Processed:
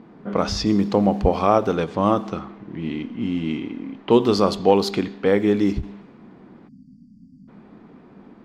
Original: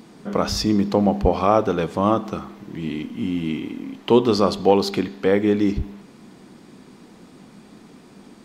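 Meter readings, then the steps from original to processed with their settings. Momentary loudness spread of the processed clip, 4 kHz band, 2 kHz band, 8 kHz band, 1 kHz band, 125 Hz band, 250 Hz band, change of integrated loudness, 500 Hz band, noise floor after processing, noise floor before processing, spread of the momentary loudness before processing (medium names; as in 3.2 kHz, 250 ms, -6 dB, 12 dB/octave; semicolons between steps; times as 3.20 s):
14 LU, -1.0 dB, 0.0 dB, -2.5 dB, 0.0 dB, 0.0 dB, 0.0 dB, 0.0 dB, 0.0 dB, -49 dBFS, -48 dBFS, 14 LU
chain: level-controlled noise filter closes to 1.6 kHz, open at -14.5 dBFS; spectral selection erased 6.68–7.48 s, 300–4500 Hz; endings held to a fixed fall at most 290 dB/s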